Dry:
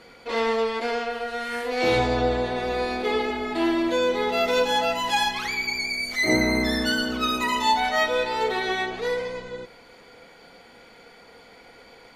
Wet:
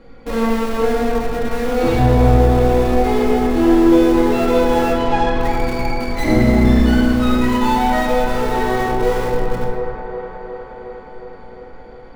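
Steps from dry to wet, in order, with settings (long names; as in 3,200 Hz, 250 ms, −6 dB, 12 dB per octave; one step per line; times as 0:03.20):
spectral tilt −4 dB per octave
mains-hum notches 60/120/180/240/300/360 Hz
in parallel at −7 dB: comparator with hysteresis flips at −28.5 dBFS
0:04.93–0:05.39: on the sum: high-frequency loss of the air 86 metres
on a send: delay with a band-pass on its return 360 ms, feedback 73%, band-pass 770 Hz, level −7 dB
on the sum: rectangular room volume 1,300 cubic metres, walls mixed, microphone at 2.2 metres
level −2.5 dB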